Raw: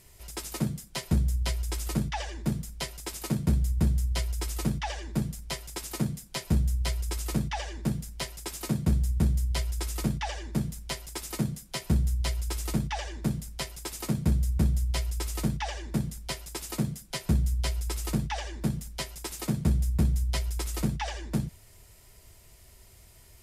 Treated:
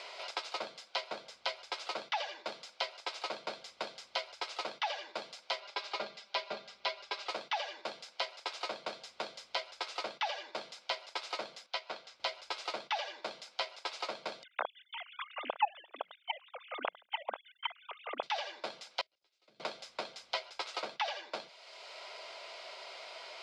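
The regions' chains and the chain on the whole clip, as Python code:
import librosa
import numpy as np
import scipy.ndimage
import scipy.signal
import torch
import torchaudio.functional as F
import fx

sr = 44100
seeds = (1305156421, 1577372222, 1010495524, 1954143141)

y = fx.chain(x, sr, fx.lowpass(hz=5100.0, slope=12),
    fx.comb(ms=5.0, depth=0.77), at=(5.6, 7.29))
y = fx.chain(y, sr, fx.lowpass(hz=6700.0, slope=12),
    fx.low_shelf(hz=450.0, db=-9.0),
    fx.upward_expand(threshold_db=-42.0, expansion=1.5), at=(11.66, 12.2))
y = fx.chain(y, sr, fx.sine_speech(),
    fx.highpass(hz=400.0, slope=12),
    fx.level_steps(step_db=16), at=(14.43, 18.23))
y = fx.chain(y, sr, fx.self_delay(depth_ms=0.07),
    fx.tone_stack(knobs='10-0-1'),
    fx.level_steps(step_db=17), at=(19.01, 19.6))
y = scipy.signal.sosfilt(scipy.signal.cheby1(3, 1.0, [570.0, 4400.0], 'bandpass', fs=sr, output='sos'), y)
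y = fx.notch(y, sr, hz=1800.0, q=6.1)
y = fx.band_squash(y, sr, depth_pct=70)
y = F.gain(torch.from_numpy(y), 3.0).numpy()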